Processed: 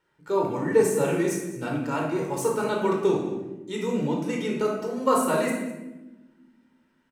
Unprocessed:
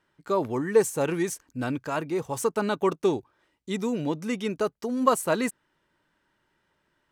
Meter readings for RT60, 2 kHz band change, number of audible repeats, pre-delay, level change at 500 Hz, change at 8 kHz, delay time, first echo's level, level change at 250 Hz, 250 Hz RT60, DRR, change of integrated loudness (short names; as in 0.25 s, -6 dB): 1.1 s, +1.0 dB, 1, 16 ms, +2.0 dB, 0.0 dB, 0.205 s, -15.5 dB, +1.5 dB, 2.0 s, -1.5 dB, +1.5 dB